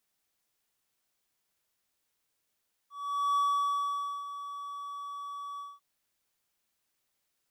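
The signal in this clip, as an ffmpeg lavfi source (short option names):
-f lavfi -i "aevalsrc='0.0794*(1-4*abs(mod(1140*t+0.25,1)-0.5))':d=2.896:s=44100,afade=t=in:d=0.463,afade=t=out:st=0.463:d=0.879:silence=0.211,afade=t=out:st=2.69:d=0.206"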